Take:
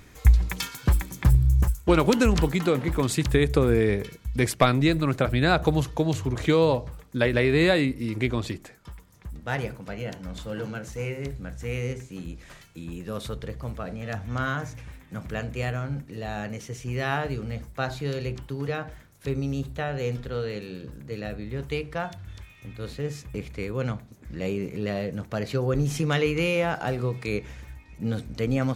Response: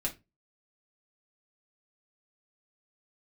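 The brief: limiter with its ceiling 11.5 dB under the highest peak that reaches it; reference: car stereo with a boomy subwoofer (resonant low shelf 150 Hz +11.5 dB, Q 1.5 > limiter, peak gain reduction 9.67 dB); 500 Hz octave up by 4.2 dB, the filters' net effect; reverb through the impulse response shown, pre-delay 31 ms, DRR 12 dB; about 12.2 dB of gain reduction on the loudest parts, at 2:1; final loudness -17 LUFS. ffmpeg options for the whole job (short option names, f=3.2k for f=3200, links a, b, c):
-filter_complex "[0:a]equalizer=f=500:t=o:g=6,acompressor=threshold=-34dB:ratio=2,alimiter=limit=-24dB:level=0:latency=1,asplit=2[a][b];[1:a]atrim=start_sample=2205,adelay=31[c];[b][c]afir=irnorm=-1:irlink=0,volume=-15.5dB[d];[a][d]amix=inputs=2:normalize=0,lowshelf=f=150:t=q:w=1.5:g=11.5,volume=13dB,alimiter=limit=-5.5dB:level=0:latency=1"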